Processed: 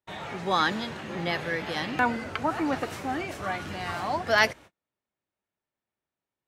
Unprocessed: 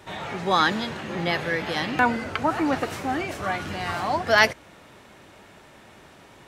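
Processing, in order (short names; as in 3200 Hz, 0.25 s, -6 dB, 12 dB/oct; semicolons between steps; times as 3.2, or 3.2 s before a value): gate -41 dBFS, range -38 dB; gain -4 dB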